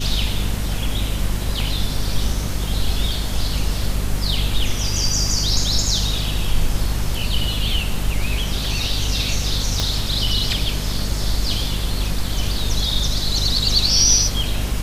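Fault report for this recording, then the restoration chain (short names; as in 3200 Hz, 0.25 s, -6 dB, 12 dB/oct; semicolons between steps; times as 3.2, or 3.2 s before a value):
hum 50 Hz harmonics 5 -24 dBFS
9.8 pop -6 dBFS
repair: de-click; de-hum 50 Hz, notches 5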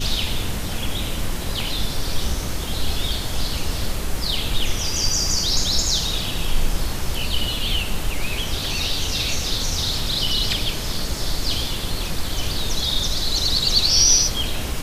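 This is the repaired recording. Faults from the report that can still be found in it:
9.8 pop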